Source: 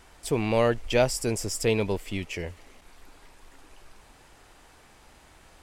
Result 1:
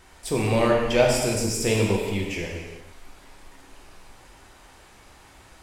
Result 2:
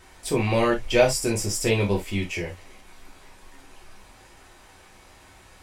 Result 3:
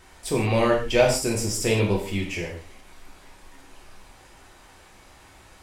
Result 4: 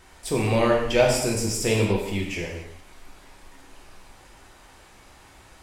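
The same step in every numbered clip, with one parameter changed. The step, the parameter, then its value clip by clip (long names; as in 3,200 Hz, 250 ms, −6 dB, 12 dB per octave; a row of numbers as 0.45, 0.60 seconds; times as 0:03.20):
reverb whose tail is shaped and stops, gate: 460, 90, 190, 310 milliseconds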